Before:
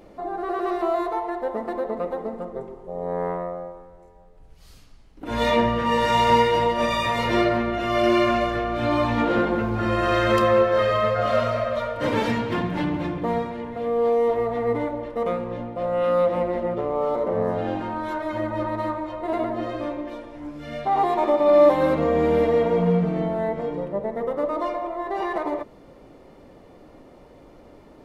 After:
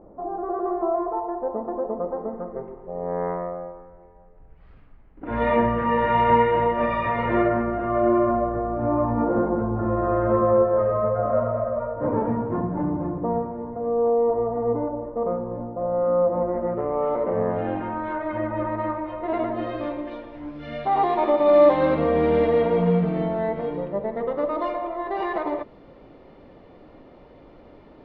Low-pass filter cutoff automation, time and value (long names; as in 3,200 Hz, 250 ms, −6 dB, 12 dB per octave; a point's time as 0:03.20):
low-pass filter 24 dB per octave
0:02.00 1,100 Hz
0:02.69 2,100 Hz
0:07.20 2,100 Hz
0:08.39 1,100 Hz
0:16.30 1,100 Hz
0:17.07 2,500 Hz
0:18.87 2,500 Hz
0:19.88 4,100 Hz